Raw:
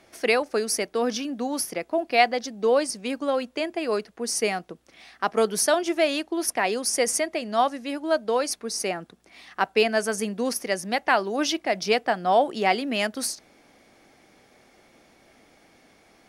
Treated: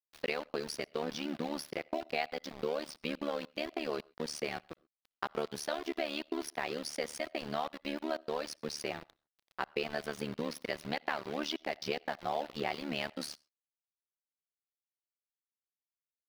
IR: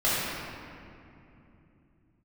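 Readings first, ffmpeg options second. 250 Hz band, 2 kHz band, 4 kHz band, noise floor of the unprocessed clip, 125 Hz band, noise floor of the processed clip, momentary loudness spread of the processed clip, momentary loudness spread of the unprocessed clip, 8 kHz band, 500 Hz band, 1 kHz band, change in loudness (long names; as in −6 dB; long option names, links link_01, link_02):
−11.0 dB, −12.5 dB, −10.5 dB, −58 dBFS, −6.0 dB, below −85 dBFS, 4 LU, 7 LU, −19.0 dB, −13.5 dB, −14.0 dB, −13.0 dB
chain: -filter_complex "[0:a]acompressor=threshold=-30dB:ratio=4,aeval=exprs='val(0)*gte(abs(val(0)),0.0133)':channel_layout=same,highshelf=frequency=5600:width_type=q:width=1.5:gain=-8.5,asplit=2[link_01][link_02];[1:a]atrim=start_sample=2205,atrim=end_sample=3528,adelay=60[link_03];[link_02][link_03]afir=irnorm=-1:irlink=0,volume=-36.5dB[link_04];[link_01][link_04]amix=inputs=2:normalize=0,tremolo=f=74:d=0.974"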